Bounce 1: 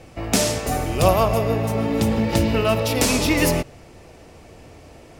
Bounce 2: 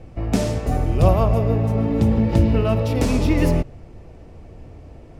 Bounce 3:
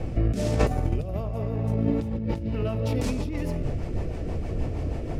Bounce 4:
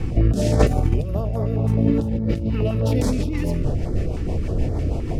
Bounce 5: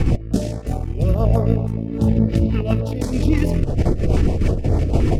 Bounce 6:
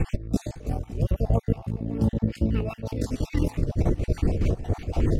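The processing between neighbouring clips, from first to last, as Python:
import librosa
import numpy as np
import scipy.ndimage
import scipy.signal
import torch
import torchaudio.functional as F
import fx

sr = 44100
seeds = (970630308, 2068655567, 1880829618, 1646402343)

y1 = fx.tilt_eq(x, sr, slope=-3.0)
y1 = F.gain(torch.from_numpy(y1), -4.5).numpy()
y2 = fx.rotary_switch(y1, sr, hz=1.2, then_hz=6.3, switch_at_s=1.75)
y2 = fx.over_compress(y2, sr, threshold_db=-30.0, ratio=-1.0)
y2 = F.gain(torch.from_numpy(y2), 4.0).numpy()
y3 = fx.filter_held_notch(y2, sr, hz=9.6, low_hz=610.0, high_hz=2700.0)
y3 = F.gain(torch.from_numpy(y3), 6.5).numpy()
y4 = fx.over_compress(y3, sr, threshold_db=-24.0, ratio=-0.5)
y4 = F.gain(torch.from_numpy(y4), 6.5).numpy()
y5 = fx.spec_dropout(y4, sr, seeds[0], share_pct=37)
y5 = y5 + 10.0 ** (-17.5 / 20.0) * np.pad(y5, (int(557 * sr / 1000.0), 0))[:len(y5)]
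y5 = F.gain(torch.from_numpy(y5), -5.0).numpy()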